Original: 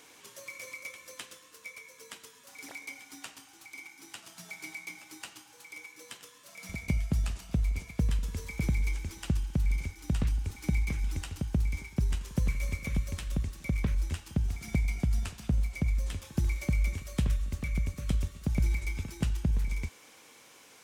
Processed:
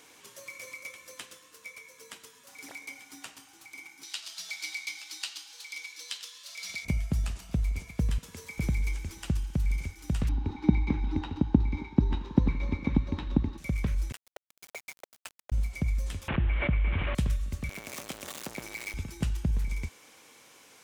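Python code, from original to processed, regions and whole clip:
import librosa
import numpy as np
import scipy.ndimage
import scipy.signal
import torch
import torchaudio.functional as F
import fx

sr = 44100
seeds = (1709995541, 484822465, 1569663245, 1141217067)

y = fx.chain(x, sr, fx.highpass(hz=1100.0, slope=6),
    fx.peak_eq(hz=4200.0, db=15.0, octaves=1.3), at=(4.03, 6.85))
y = fx.chain(y, sr, fx.highpass(hz=83.0, slope=24),
    fx.low_shelf(hz=180.0, db=-11.0), at=(8.18, 8.58))
y = fx.chain(y, sr, fx.air_absorb(metres=250.0),
    fx.small_body(hz=(290.0, 870.0, 3800.0), ring_ms=25, db=17), at=(10.29, 13.58))
y = fx.chain(y, sr, fx.steep_highpass(hz=430.0, slope=72),
    fx.sample_gate(floor_db=-39.5), at=(14.12, 15.52))
y = fx.chain(y, sr, fx.delta_mod(bps=16000, step_db=-40.0),
    fx.env_flatten(amount_pct=70), at=(16.28, 17.15))
y = fx.chain(y, sr, fx.zero_step(step_db=-30.5),
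    fx.highpass(hz=400.0, slope=12), at=(17.69, 18.94))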